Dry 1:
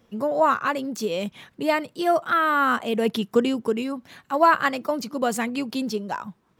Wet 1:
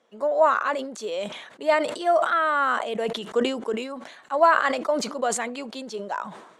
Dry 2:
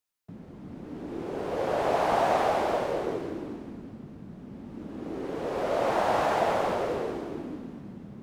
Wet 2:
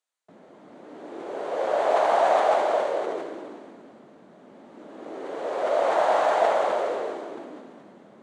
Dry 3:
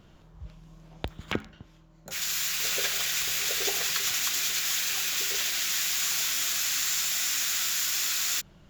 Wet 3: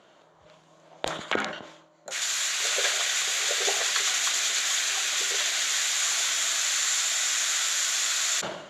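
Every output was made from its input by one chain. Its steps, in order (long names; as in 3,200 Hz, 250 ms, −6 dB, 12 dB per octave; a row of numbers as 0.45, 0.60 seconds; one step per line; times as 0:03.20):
loudspeaker in its box 460–8,900 Hz, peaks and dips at 620 Hz +5 dB, 2,600 Hz −4 dB, 5,200 Hz −7 dB
level that may fall only so fast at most 66 dB per second
loudness normalisation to −24 LKFS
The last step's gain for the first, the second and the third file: −1.5, +2.5, +5.0 decibels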